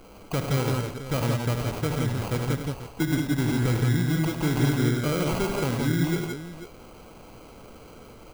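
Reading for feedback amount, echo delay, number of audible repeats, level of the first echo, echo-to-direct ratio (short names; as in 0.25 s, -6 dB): no steady repeat, 50 ms, 4, -14.5 dB, -1.0 dB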